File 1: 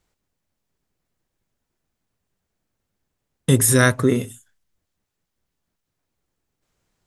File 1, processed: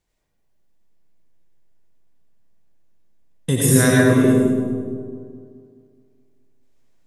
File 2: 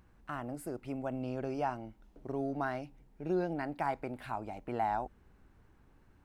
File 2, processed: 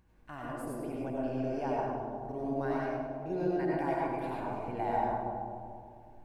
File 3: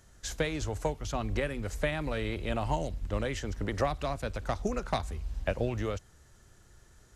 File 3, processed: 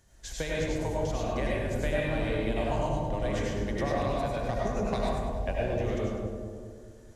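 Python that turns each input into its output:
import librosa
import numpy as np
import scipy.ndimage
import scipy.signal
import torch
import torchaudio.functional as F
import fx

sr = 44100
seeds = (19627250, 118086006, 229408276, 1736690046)

y = fx.notch(x, sr, hz=1300.0, q=6.7)
y = fx.echo_split(y, sr, split_hz=990.0, low_ms=212, high_ms=101, feedback_pct=52, wet_db=-9)
y = fx.rev_freeverb(y, sr, rt60_s=1.6, hf_ratio=0.25, predelay_ms=55, drr_db=-4.5)
y = y * 10.0 ** (-4.5 / 20.0)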